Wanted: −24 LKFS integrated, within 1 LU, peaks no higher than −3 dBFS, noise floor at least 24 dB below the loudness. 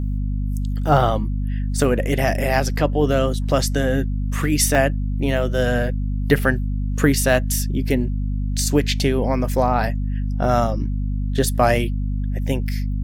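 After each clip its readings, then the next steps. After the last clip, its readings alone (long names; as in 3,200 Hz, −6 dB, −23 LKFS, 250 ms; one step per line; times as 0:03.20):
number of dropouts 1; longest dropout 1.6 ms; mains hum 50 Hz; hum harmonics up to 250 Hz; level of the hum −20 dBFS; integrated loudness −21.0 LKFS; sample peak −1.5 dBFS; target loudness −24.0 LKFS
→ repair the gap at 0:04.75, 1.6 ms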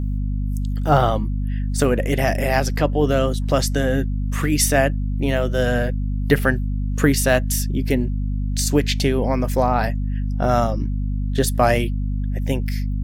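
number of dropouts 0; mains hum 50 Hz; hum harmonics up to 250 Hz; level of the hum −20 dBFS
→ hum removal 50 Hz, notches 5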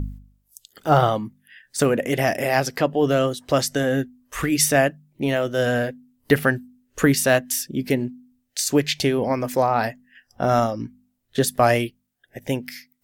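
mains hum none found; integrated loudness −22.0 LKFS; sample peak −3.0 dBFS; target loudness −24.0 LKFS
→ level −2 dB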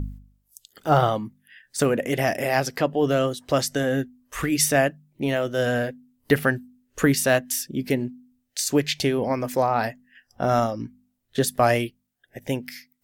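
integrated loudness −24.0 LKFS; sample peak −5.0 dBFS; background noise floor −73 dBFS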